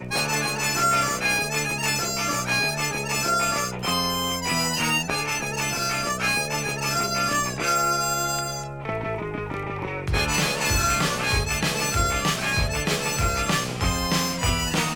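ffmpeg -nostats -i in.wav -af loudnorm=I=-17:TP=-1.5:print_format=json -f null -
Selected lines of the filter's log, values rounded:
"input_i" : "-23.4",
"input_tp" : "-8.1",
"input_lra" : "2.0",
"input_thresh" : "-33.4",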